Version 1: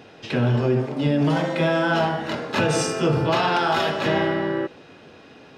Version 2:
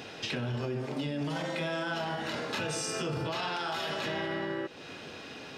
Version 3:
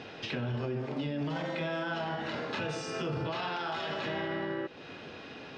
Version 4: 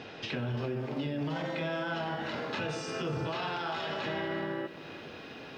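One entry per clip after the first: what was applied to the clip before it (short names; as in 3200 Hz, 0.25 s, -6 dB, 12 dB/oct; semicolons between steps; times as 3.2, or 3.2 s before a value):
high shelf 2100 Hz +9.5 dB; limiter -16 dBFS, peak gain reduction 9.5 dB; compressor 3:1, threshold -34 dBFS, peak gain reduction 10.5 dB
air absorption 150 m
lo-fi delay 0.344 s, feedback 35%, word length 10-bit, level -15 dB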